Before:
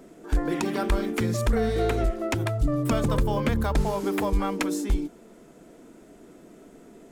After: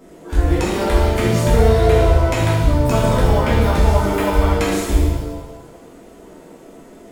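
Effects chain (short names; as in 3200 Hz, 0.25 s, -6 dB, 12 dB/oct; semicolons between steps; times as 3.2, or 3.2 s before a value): shimmer reverb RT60 1.1 s, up +7 st, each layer -8 dB, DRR -7 dB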